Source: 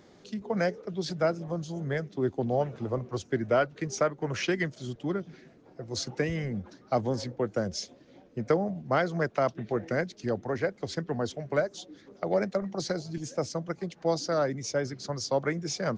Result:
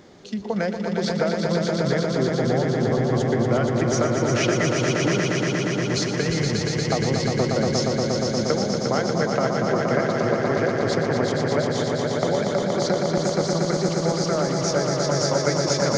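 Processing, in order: compressor, threshold -29 dBFS, peak gain reduction 10 dB; on a send: swelling echo 0.118 s, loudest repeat 5, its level -5 dB; on the sum: gain +7.5 dB

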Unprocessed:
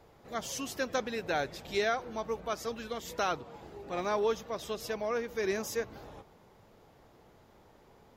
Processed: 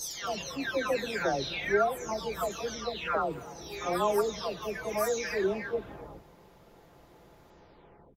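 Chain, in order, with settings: spectral delay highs early, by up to 0.663 s; echo 0.281 s -22 dB; gain +5 dB

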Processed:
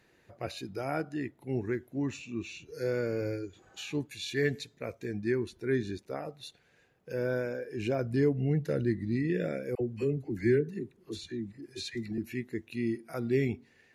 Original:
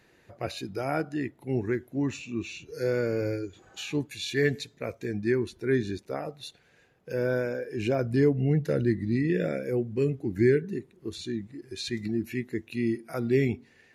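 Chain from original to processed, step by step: 9.75–12.18 dispersion lows, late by 57 ms, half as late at 670 Hz; gain -4 dB

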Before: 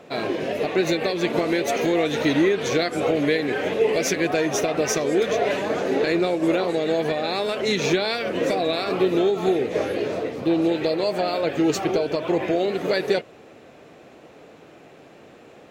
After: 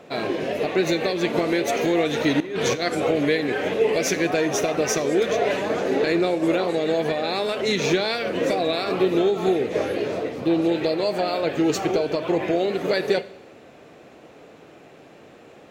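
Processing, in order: 2.4–2.95 negative-ratio compressor -24 dBFS, ratio -0.5; Schroeder reverb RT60 0.76 s, combs from 32 ms, DRR 16 dB

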